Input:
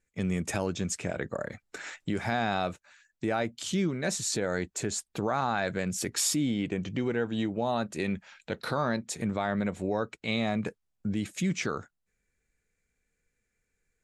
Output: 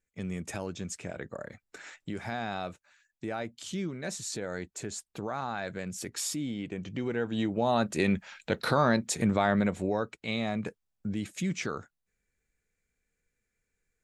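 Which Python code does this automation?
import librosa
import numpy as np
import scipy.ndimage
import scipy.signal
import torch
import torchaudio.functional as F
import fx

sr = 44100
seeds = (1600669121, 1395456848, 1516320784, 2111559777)

y = fx.gain(x, sr, db=fx.line((6.69, -6.0), (7.91, 4.5), (9.48, 4.5), (10.2, -2.5)))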